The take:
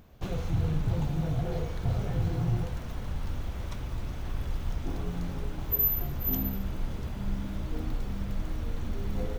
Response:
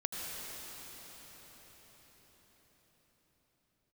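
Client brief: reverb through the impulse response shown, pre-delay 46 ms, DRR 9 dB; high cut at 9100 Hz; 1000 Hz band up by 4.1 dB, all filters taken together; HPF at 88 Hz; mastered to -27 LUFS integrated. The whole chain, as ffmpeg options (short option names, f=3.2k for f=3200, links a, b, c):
-filter_complex "[0:a]highpass=88,lowpass=9.1k,equalizer=f=1k:t=o:g=5.5,asplit=2[a][b];[1:a]atrim=start_sample=2205,adelay=46[c];[b][c]afir=irnorm=-1:irlink=0,volume=-12.5dB[d];[a][d]amix=inputs=2:normalize=0,volume=7.5dB"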